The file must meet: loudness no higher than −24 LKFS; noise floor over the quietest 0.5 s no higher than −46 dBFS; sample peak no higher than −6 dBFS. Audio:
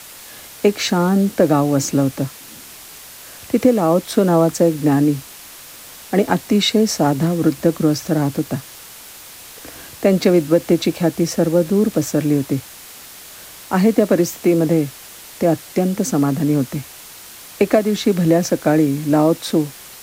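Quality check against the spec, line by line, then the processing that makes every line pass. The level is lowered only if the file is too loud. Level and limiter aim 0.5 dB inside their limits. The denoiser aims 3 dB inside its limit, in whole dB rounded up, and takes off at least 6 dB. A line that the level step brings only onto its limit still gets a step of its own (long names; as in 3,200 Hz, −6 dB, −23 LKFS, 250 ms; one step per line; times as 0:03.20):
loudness −17.5 LKFS: out of spec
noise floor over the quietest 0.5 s −38 dBFS: out of spec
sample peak −1.5 dBFS: out of spec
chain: broadband denoise 6 dB, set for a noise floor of −38 dBFS
level −7 dB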